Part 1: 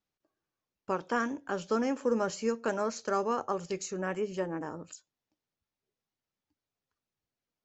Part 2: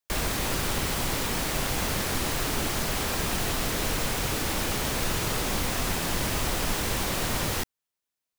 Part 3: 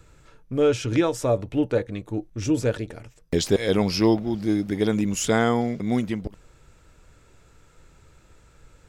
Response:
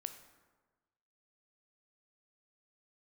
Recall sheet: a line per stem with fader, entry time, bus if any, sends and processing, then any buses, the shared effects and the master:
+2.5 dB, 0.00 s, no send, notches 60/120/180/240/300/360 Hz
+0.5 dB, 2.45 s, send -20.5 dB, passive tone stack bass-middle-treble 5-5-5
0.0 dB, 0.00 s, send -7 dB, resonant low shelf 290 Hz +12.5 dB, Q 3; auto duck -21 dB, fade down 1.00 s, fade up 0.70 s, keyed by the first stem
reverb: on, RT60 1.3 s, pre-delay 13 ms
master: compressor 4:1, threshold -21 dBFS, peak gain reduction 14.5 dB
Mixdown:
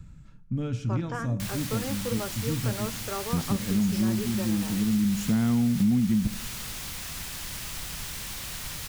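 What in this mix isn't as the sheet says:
stem 1 +2.5 dB -> -4.5 dB; stem 2: entry 2.45 s -> 1.30 s; stem 3 0.0 dB -> -7.5 dB

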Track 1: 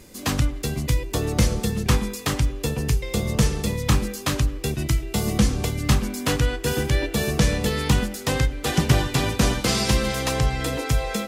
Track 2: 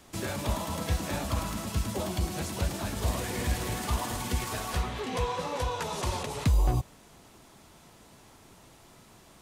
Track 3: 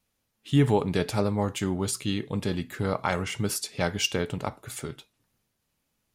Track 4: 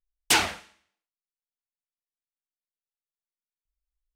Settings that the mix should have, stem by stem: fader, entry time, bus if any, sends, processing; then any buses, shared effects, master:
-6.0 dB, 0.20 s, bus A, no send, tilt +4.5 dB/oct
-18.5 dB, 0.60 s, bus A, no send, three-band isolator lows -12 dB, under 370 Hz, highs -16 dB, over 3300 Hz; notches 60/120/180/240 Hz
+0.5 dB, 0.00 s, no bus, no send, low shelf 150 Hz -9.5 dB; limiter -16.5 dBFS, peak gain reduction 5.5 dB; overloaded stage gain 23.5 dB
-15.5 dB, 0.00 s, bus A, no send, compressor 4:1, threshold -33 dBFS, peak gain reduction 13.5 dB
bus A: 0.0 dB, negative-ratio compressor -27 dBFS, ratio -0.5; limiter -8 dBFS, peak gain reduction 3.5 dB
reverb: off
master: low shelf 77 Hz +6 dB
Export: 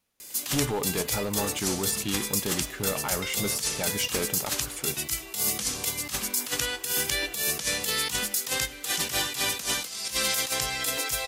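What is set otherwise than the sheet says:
stem 4 -15.5 dB -> -24.5 dB; master: missing low shelf 77 Hz +6 dB

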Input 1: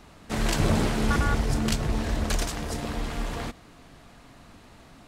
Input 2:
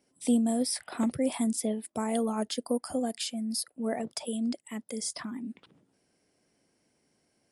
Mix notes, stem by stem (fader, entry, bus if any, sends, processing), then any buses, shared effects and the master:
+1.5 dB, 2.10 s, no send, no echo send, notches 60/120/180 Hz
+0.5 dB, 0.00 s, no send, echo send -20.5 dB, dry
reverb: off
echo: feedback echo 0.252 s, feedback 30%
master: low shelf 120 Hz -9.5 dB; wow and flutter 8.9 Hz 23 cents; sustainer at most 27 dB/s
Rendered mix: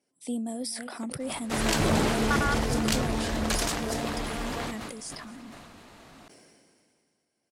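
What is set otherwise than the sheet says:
stem 1: entry 2.10 s -> 1.20 s; stem 2 +0.5 dB -> -6.0 dB

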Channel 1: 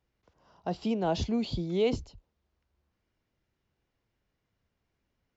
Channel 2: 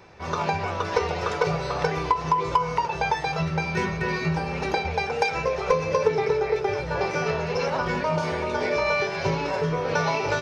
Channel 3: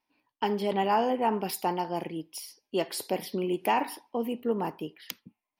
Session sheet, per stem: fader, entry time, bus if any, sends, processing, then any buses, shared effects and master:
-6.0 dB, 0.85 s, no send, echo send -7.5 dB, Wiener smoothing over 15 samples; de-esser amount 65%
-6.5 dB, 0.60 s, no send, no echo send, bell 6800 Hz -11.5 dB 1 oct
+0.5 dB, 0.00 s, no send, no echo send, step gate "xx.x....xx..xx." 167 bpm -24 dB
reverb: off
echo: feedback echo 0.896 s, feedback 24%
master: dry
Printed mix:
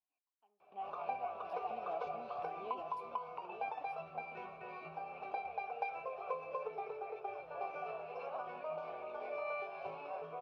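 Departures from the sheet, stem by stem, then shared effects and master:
stem 3 +0.5 dB -> -10.5 dB; master: extra vowel filter a

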